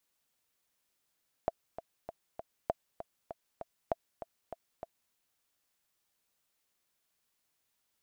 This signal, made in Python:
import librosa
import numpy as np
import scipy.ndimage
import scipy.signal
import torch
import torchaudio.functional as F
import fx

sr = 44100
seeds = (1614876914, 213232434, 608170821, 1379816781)

y = fx.click_track(sr, bpm=197, beats=4, bars=3, hz=667.0, accent_db=12.0, level_db=-16.0)